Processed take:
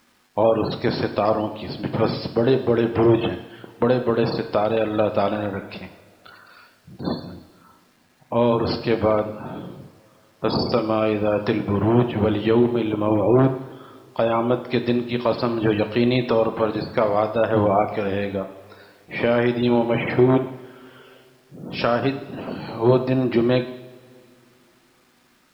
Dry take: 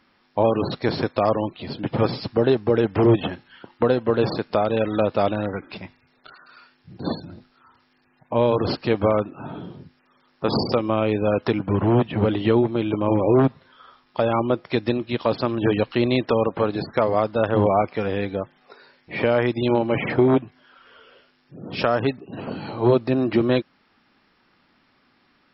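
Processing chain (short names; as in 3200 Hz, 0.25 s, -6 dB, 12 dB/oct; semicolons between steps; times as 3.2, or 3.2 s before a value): two-slope reverb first 0.81 s, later 3.3 s, from -19 dB, DRR 7 dB; requantised 10-bit, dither none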